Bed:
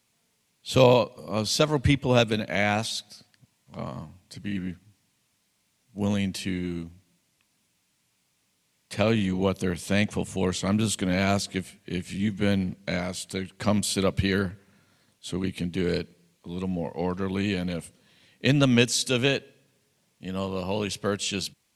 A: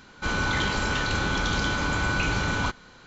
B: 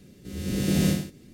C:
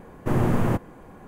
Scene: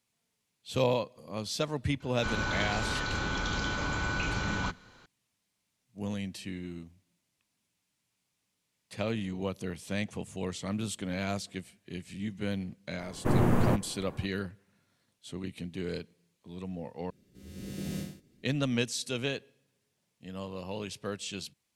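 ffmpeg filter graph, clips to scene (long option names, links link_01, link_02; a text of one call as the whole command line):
ffmpeg -i bed.wav -i cue0.wav -i cue1.wav -i cue2.wav -filter_complex "[0:a]volume=-9.5dB,asplit=2[link_01][link_02];[link_01]atrim=end=17.104[link_03];[2:a]atrim=end=1.33,asetpts=PTS-STARTPTS,volume=-14dB[link_04];[link_02]atrim=start=18.426[link_05];[1:a]atrim=end=3.06,asetpts=PTS-STARTPTS,volume=-6.5dB,afade=type=in:duration=0.004:curve=hsin,afade=type=out:start_time=3.056:duration=0.004:curve=hsin,adelay=2000[link_06];[3:a]atrim=end=1.27,asetpts=PTS-STARTPTS,volume=-3dB,afade=type=in:duration=0.004:curve=hsin,afade=type=out:start_time=1.266:duration=0.004:curve=hsin,adelay=12990[link_07];[link_03][link_04]acrossfade=duration=0.004:curve1=hsin:curve2=hsin[link_08];[link_08][link_05]acrossfade=duration=0.004:curve1=hsin:curve2=hsin[link_09];[link_09][link_06][link_07]amix=inputs=3:normalize=0" out.wav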